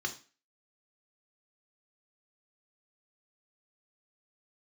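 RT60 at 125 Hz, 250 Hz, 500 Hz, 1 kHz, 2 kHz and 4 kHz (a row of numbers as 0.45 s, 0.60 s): 0.35 s, 0.40 s, 0.35 s, 0.35 s, 0.40 s, 0.35 s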